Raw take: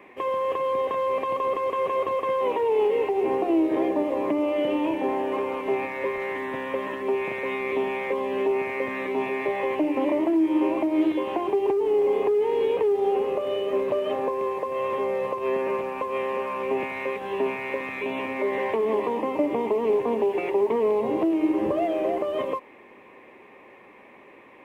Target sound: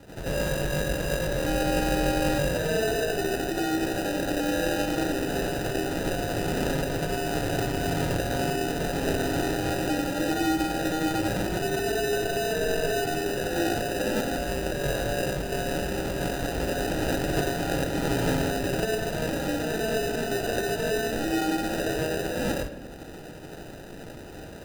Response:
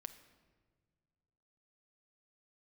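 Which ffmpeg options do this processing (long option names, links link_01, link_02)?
-filter_complex "[0:a]alimiter=level_in=0.5dB:limit=-24dB:level=0:latency=1:release=384,volume=-0.5dB,asettb=1/sr,asplit=3[link_01][link_02][link_03];[link_01]atrim=end=1.374[link_04];[link_02]atrim=start=1.37:end=2.29,asetpts=PTS-STARTPTS,afade=type=in:duration=0.004:curve=qsin,afade=type=out:start_time=0.916:duration=0.004:curve=qsin,aeval=exprs='val(0)+0.00398*sin(2*PI*3000*n/s)':channel_layout=same[link_05];[link_03]atrim=start=2.286[link_06];[link_04][link_05]acrossfade=duration=0.004:curve1=hsin:curve2=qsin[link_07];[link_07][link_06]acrossfade=duration=0.004:curve1=qsin:curve2=hsin,aexciter=amount=13.3:drive=9.8:freq=3300,acrusher=samples=40:mix=1:aa=0.000001,asplit=2[link_08][link_09];[1:a]atrim=start_sample=2205,adelay=92[link_10];[link_09][link_10]afir=irnorm=-1:irlink=0,volume=11.5dB[link_11];[link_08][link_11]amix=inputs=2:normalize=0,volume=-4dB"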